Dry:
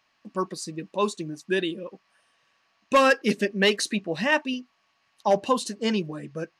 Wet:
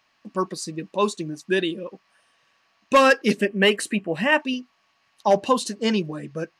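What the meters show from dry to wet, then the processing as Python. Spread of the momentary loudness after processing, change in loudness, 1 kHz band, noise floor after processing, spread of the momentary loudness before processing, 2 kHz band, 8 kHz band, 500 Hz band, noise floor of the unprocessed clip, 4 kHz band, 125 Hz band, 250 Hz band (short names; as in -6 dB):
14 LU, +3.0 dB, +3.0 dB, -67 dBFS, 14 LU, +3.0 dB, +1.5 dB, +3.0 dB, -70 dBFS, +2.0 dB, +3.0 dB, +3.0 dB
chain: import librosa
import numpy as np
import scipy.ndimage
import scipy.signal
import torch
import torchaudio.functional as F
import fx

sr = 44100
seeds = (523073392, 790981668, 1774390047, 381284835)

y = fx.spec_box(x, sr, start_s=3.4, length_s=1.0, low_hz=3300.0, high_hz=7000.0, gain_db=-10)
y = F.gain(torch.from_numpy(y), 3.0).numpy()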